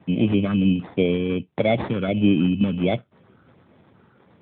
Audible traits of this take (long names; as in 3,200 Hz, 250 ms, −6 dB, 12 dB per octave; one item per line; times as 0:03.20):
phaser sweep stages 12, 1.4 Hz, lowest notch 670–2,600 Hz
aliases and images of a low sample rate 2,800 Hz, jitter 0%
AMR narrowband